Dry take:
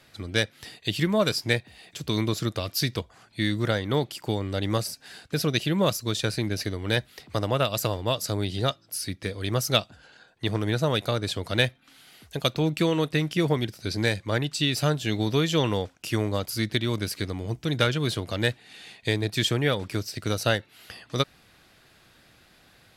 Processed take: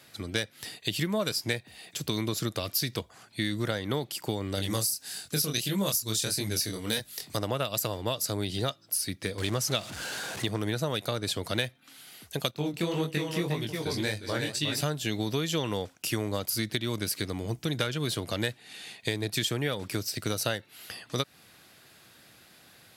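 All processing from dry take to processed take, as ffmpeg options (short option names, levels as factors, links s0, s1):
-filter_complex "[0:a]asettb=1/sr,asplit=3[s0][s1][s2];[s0]atrim=end=4.554[s3];[s1]atrim=start=4.55:end=7.37,asetpts=PTS-STARTPTS,afade=t=in:d=0.004:c=qsin,afade=t=out:st=2.816:d=0.004:c=qsin,bass=f=250:g=3,treble=f=4000:g=12,flanger=delay=20:depth=7.5:speed=1.6[s4];[s2]atrim=start=7.366[s5];[s3][s4]acrossfade=d=0.004:c1=hsin:c2=qsin[s6];[s6][s5]acrossfade=d=0.004:c1=qsin:c2=hsin,asettb=1/sr,asplit=3[s7][s8][s9];[s7]atrim=end=9.384[s10];[s8]atrim=start=9.38:end=10.46,asetpts=PTS-STARTPTS,afade=t=in:d=0.004:c=qsin,afade=t=out:st=1.076:d=0.004:c=qsin,aeval=exprs='val(0)+0.5*0.0251*sgn(val(0))':c=same,lowpass=9500[s11];[s9]atrim=start=10.456[s12];[s10][s11]acrossfade=d=0.004:c1=hsin:c2=qsin[s13];[s13][s12]acrossfade=d=0.004:c1=qsin:c2=hsin,asettb=1/sr,asplit=3[s14][s15][s16];[s14]atrim=end=12.514[s17];[s15]atrim=start=12.51:end=14.81,asetpts=PTS-STARTPTS,afade=t=in:d=0.004:c=qsin,afade=t=out:st=2.296:d=0.004:c=qsin,aecho=1:1:182|358:0.15|0.562,atrim=end_sample=101430,agate=range=0.501:threshold=0.0251:ratio=16:release=100:detection=peak,flanger=delay=18.5:depth=5.5:speed=1.8[s18];[s16]atrim=start=14.806[s19];[s17][s18]acrossfade=d=0.004:c1=hsin:c2=qsin[s20];[s20][s19]acrossfade=d=0.004:c1=qsin:c2=hsin,highpass=97,highshelf=f=7300:g=10,acompressor=threshold=0.0501:ratio=4"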